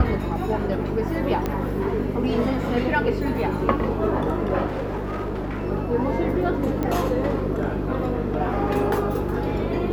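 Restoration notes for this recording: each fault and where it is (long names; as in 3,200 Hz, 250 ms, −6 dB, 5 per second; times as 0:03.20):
mains hum 50 Hz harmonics 6 −28 dBFS
0:01.46: click −12 dBFS
0:04.66–0:05.67: clipping −24 dBFS
0:06.83: click −14 dBFS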